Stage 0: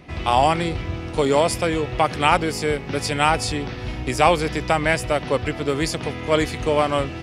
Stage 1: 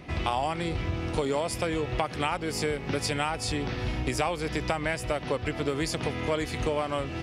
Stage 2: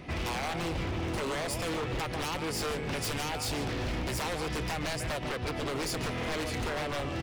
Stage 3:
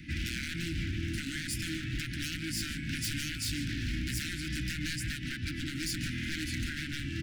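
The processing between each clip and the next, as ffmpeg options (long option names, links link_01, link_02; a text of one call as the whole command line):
ffmpeg -i in.wav -af "acompressor=threshold=-25dB:ratio=6" out.wav
ffmpeg -i in.wav -filter_complex "[0:a]asplit=2[link_01][link_02];[link_02]adelay=145.8,volume=-12dB,highshelf=frequency=4000:gain=-3.28[link_03];[link_01][link_03]amix=inputs=2:normalize=0,aeval=exprs='0.0422*(abs(mod(val(0)/0.0422+3,4)-2)-1)':channel_layout=same" out.wav
ffmpeg -i in.wav -af "asuperstop=centerf=700:order=20:qfactor=0.61" out.wav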